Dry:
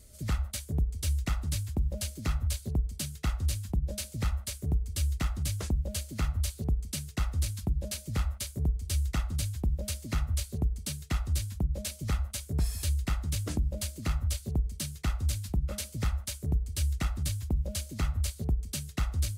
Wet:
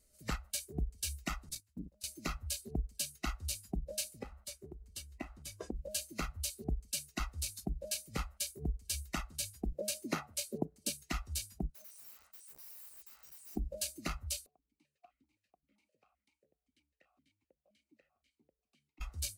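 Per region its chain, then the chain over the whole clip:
1.49–2.04 gate -30 dBFS, range -18 dB + core saturation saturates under 130 Hz
4.19–5.75 high shelf 3200 Hz -9 dB + compressor 3:1, threshold -28 dBFS
9.72–10.9 HPF 99 Hz 24 dB/oct + bell 440 Hz +6 dB 2.1 oct
11.69–13.56 weighting filter ITU-R 468 + compressor 8:1, threshold -42 dBFS + wrapped overs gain 43.5 dB
14.46–19.01 compressor 2.5:1, threshold -38 dBFS + vowel sequencer 7.7 Hz
whole clip: spectral noise reduction 13 dB; bell 88 Hz -12 dB 1.7 oct; notch 3400 Hz, Q 9.4

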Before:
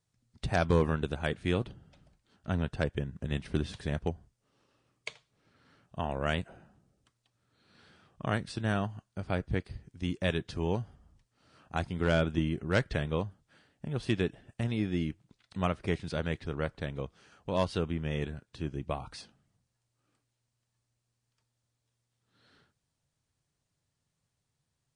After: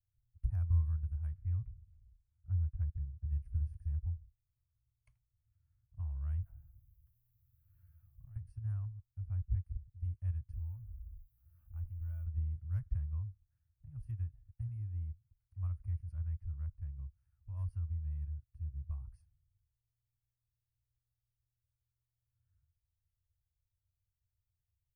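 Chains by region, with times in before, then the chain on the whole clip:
1.33–3.3 air absorption 200 m + careless resampling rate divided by 8×, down none, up filtered
6.42–8.36 G.711 law mismatch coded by mu + compressor 12:1, threshold -39 dBFS
10.53–12.26 G.711 law mismatch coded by mu + comb 3.4 ms, depth 43% + compressor 1.5:1, threshold -44 dBFS
whole clip: dynamic EQ 1100 Hz, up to +8 dB, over -51 dBFS, Q 2.4; inverse Chebyshev band-stop 180–8000 Hz, stop band 40 dB; high shelf 6800 Hz -6.5 dB; gain +4.5 dB

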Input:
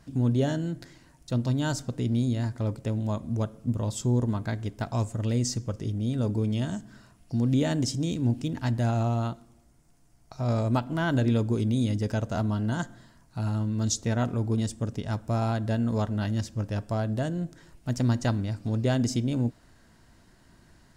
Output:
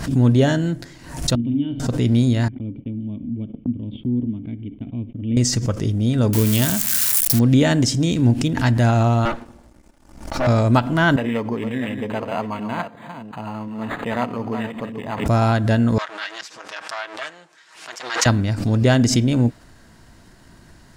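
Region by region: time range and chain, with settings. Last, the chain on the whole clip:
1.35–1.8 vocal tract filter i + flutter echo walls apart 7.3 m, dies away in 0.35 s
2.48–5.37 vocal tract filter i + gate -51 dBFS, range -33 dB
6.33–7.39 switching spikes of -24.5 dBFS + high shelf 6100 Hz +10.5 dB
9.25–10.47 minimum comb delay 3.4 ms + high shelf 5000 Hz -12 dB + sample leveller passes 2
11.16–15.26 reverse delay 0.359 s, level -8 dB + speaker cabinet 310–4400 Hz, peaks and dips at 350 Hz -10 dB, 610 Hz -4 dB, 1000 Hz +4 dB, 1500 Hz -9 dB, 2700 Hz +3 dB + decimation joined by straight lines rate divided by 8×
15.98–18.26 minimum comb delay 6.3 ms + HPF 1300 Hz + air absorption 72 m
whole clip: dynamic EQ 1900 Hz, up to +5 dB, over -47 dBFS, Q 0.89; backwards sustainer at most 87 dB/s; gain +9 dB

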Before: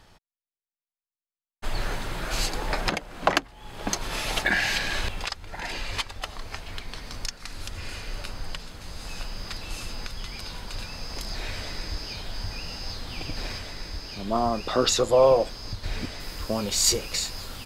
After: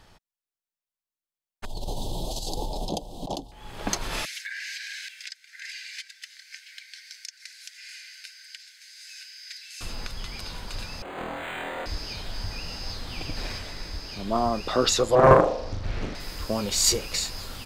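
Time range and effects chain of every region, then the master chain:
1.65–3.52 elliptic band-stop 860–3400 Hz, stop band 50 dB + negative-ratio compressor -30 dBFS
4.25–9.81 rippled Chebyshev high-pass 1500 Hz, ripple 6 dB + compressor 4:1, threshold -33 dBFS
11.02–11.86 HPF 600 Hz + flutter echo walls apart 4.2 m, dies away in 0.97 s + decimation joined by straight lines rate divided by 8×
15.15–16.15 LPF 1600 Hz 6 dB/oct + flutter echo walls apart 6.8 m, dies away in 0.73 s + Doppler distortion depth 0.97 ms
whole clip: dry

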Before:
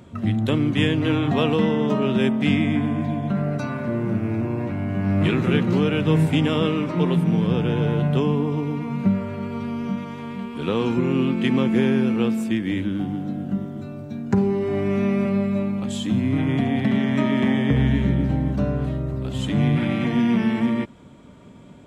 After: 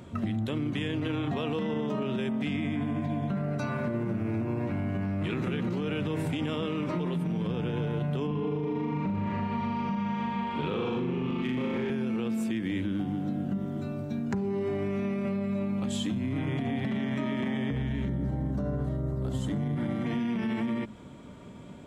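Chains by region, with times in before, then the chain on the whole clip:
8.27–11.9 LPF 4200 Hz + hard clip -12.5 dBFS + flutter echo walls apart 6.8 m, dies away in 1.4 s
18.08–20.06 bell 3000 Hz -8 dB 1.5 oct + notch 2500 Hz, Q 6.2
whole clip: de-hum 52.96 Hz, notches 5; limiter -18 dBFS; compressor, threshold -27 dBFS

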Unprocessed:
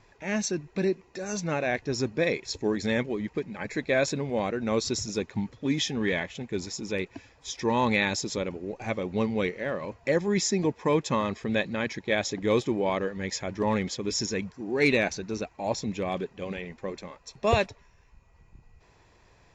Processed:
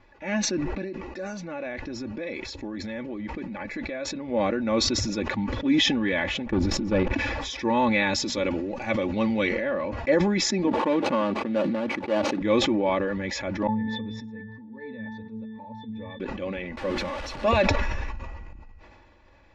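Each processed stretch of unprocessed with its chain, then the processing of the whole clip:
0.64–4.28 compressor 10:1, threshold -31 dBFS + mismatched tape noise reduction decoder only
6.46–7.13 tilt -3 dB/oct + level quantiser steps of 13 dB + sample leveller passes 2
8.13–9.53 high shelf 2600 Hz +8.5 dB + notches 60/120/180/240 Hz
10.67–12.41 median filter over 25 samples + HPF 190 Hz
13.67–16.2 octave resonator A, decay 0.34 s + mismatched tape noise reduction encoder only
16.77–17.62 zero-crossing step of -31.5 dBFS + notches 50/100/150/200/250/300/350/400 Hz
whole clip: LPF 3300 Hz 12 dB/oct; comb 3.5 ms, depth 71%; sustainer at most 25 dB/s

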